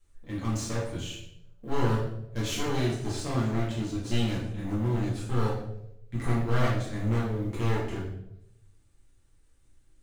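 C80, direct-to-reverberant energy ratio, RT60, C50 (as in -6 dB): 6.0 dB, -7.5 dB, 0.85 s, 3.5 dB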